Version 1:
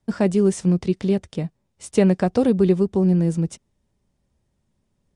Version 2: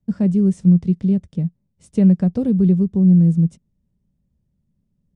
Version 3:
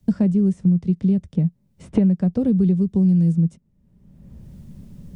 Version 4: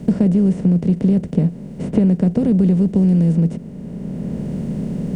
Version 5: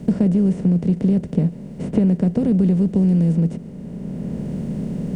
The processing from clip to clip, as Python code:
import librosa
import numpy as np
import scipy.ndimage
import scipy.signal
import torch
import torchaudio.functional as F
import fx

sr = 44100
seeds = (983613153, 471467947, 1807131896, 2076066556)

y1 = fx.curve_eq(x, sr, hz=(120.0, 170.0, 360.0, 550.0, 780.0), db=(0, 6, -9, -9, -15))
y1 = y1 * 10.0 ** (1.5 / 20.0)
y2 = fx.band_squash(y1, sr, depth_pct=100)
y2 = y2 * 10.0 ** (-2.5 / 20.0)
y3 = fx.bin_compress(y2, sr, power=0.4)
y4 = fx.echo_thinned(y3, sr, ms=143, feedback_pct=84, hz=420.0, wet_db=-21.0)
y4 = y4 * 10.0 ** (-2.0 / 20.0)